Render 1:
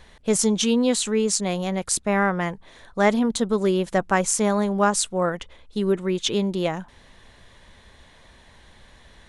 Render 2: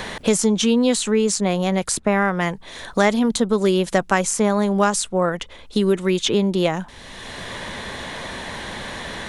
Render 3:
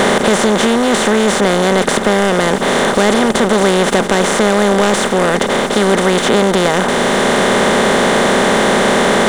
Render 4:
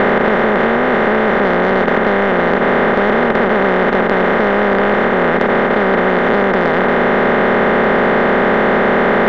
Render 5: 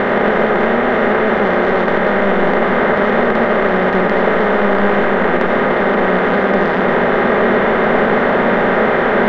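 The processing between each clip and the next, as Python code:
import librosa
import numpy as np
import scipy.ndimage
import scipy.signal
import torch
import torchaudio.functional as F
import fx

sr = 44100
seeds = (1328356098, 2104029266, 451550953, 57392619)

y1 = fx.band_squash(x, sr, depth_pct=70)
y1 = F.gain(torch.from_numpy(y1), 3.0).numpy()
y2 = fx.bin_compress(y1, sr, power=0.2)
y2 = fx.high_shelf(y2, sr, hz=3500.0, db=-7.0)
y2 = fx.leveller(y2, sr, passes=2)
y2 = F.gain(torch.from_numpy(y2), -6.5).numpy()
y3 = fx.bin_compress(y2, sr, power=0.2)
y3 = fx.ladder_lowpass(y3, sr, hz=2400.0, resonance_pct=30)
y3 = 10.0 ** (-1.5 / 20.0) * np.tanh(y3 / 10.0 ** (-1.5 / 20.0))
y4 = fx.rev_freeverb(y3, sr, rt60_s=1.4, hf_ratio=0.55, predelay_ms=35, drr_db=2.0)
y4 = F.gain(torch.from_numpy(y4), -3.0).numpy()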